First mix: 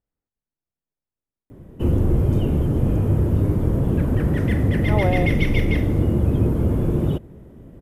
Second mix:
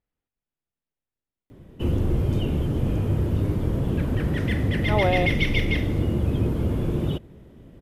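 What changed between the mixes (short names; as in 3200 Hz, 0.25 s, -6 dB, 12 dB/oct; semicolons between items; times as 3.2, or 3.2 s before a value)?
background -4.5 dB; master: add bell 3600 Hz +10 dB 1.8 oct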